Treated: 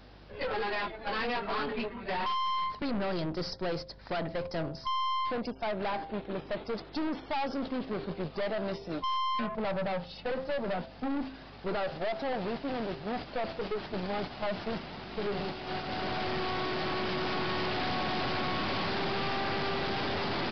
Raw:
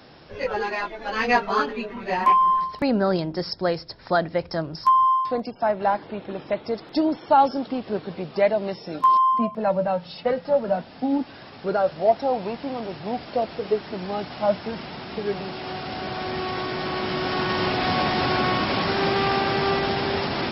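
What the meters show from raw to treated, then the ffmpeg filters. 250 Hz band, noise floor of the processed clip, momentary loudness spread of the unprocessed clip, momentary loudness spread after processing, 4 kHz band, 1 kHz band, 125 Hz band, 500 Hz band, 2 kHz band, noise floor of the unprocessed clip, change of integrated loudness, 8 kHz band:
−8.0 dB, −49 dBFS, 12 LU, 5 LU, −5.5 dB, −11.5 dB, −7.0 dB, −10.0 dB, −7.5 dB, −44 dBFS, −10.0 dB, can't be measured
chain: -af "agate=range=-8dB:threshold=-31dB:ratio=16:detection=peak,aeval=exprs='val(0)+0.00178*(sin(2*PI*50*n/s)+sin(2*PI*2*50*n/s)/2+sin(2*PI*3*50*n/s)/3+sin(2*PI*4*50*n/s)/4+sin(2*PI*5*50*n/s)/5)':channel_layout=same,acompressor=threshold=-25dB:ratio=2,bandreject=frequency=132.1:width_type=h:width=4,bandreject=frequency=264.2:width_type=h:width=4,bandreject=frequency=396.3:width_type=h:width=4,bandreject=frequency=528.4:width_type=h:width=4,bandreject=frequency=660.5:width_type=h:width=4,bandreject=frequency=792.6:width_type=h:width=4,aeval=exprs='(tanh(44.7*val(0)+0.45)-tanh(0.45))/44.7':channel_layout=same,aresample=11025,aresample=44100,volume=3dB"

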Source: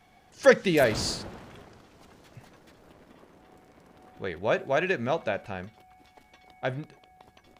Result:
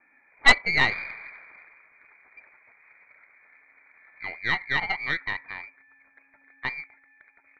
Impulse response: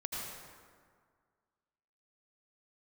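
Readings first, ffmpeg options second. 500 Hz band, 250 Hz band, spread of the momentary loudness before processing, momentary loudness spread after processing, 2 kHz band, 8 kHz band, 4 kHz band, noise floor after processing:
−16.0 dB, −10.0 dB, 18 LU, 20 LU, +8.0 dB, can't be measured, +6.0 dB, −63 dBFS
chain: -af "lowpass=frequency=2100:width_type=q:width=0.5098,lowpass=frequency=2100:width_type=q:width=0.6013,lowpass=frequency=2100:width_type=q:width=0.9,lowpass=frequency=2100:width_type=q:width=2.563,afreqshift=-2500,aeval=exprs='0.631*(cos(1*acos(clip(val(0)/0.631,-1,1)))-cos(1*PI/2))+0.178*(cos(4*acos(clip(val(0)/0.631,-1,1)))-cos(4*PI/2))+0.0178*(cos(7*acos(clip(val(0)/0.631,-1,1)))-cos(7*PI/2))':channel_layout=same"

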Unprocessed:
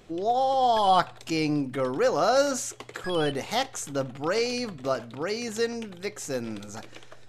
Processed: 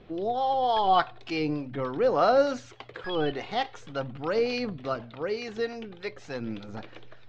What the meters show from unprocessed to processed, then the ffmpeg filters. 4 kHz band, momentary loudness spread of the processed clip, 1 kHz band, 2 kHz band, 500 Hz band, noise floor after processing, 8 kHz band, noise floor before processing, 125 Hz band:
−4.0 dB, 16 LU, −1.5 dB, −2.0 dB, −1.0 dB, −49 dBFS, below −15 dB, −47 dBFS, −2.0 dB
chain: -filter_complex "[0:a]lowpass=frequency=4200:width=0.5412,lowpass=frequency=4200:width=1.3066,acrossover=split=570[link_01][link_02];[link_01]aeval=exprs='val(0)*(1-0.5/2+0.5/2*cos(2*PI*3.4*n/s))':channel_layout=same[link_03];[link_02]aeval=exprs='val(0)*(1-0.5/2-0.5/2*cos(2*PI*3.4*n/s))':channel_layout=same[link_04];[link_03][link_04]amix=inputs=2:normalize=0,aphaser=in_gain=1:out_gain=1:delay=2.8:decay=0.34:speed=0.44:type=sinusoidal"

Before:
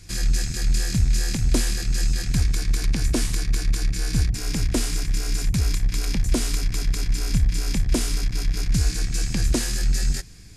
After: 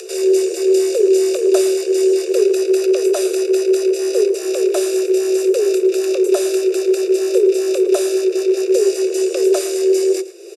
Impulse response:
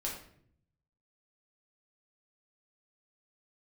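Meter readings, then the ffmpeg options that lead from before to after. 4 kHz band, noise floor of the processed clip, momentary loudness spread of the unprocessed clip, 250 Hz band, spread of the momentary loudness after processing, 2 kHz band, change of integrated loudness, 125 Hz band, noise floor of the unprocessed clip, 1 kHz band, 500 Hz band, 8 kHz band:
+1.0 dB, −26 dBFS, 3 LU, +11.5 dB, 3 LU, +1.0 dB, +8.5 dB, below −40 dB, −31 dBFS, +6.0 dB, +26.5 dB, +2.5 dB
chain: -filter_complex "[0:a]aecho=1:1:0.9:0.79,acompressor=mode=upward:threshold=-25dB:ratio=2.5,afreqshift=340,asplit=2[link_01][link_02];[link_02]adelay=110.8,volume=-15dB,highshelf=frequency=4000:gain=-2.49[link_03];[link_01][link_03]amix=inputs=2:normalize=0"

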